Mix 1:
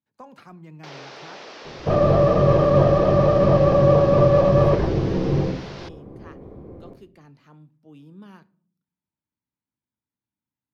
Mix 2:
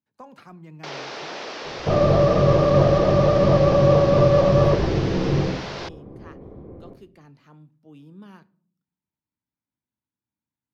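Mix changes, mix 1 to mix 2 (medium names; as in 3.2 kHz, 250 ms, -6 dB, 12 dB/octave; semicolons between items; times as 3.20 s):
first sound +6.5 dB; second sound: add distance through air 190 m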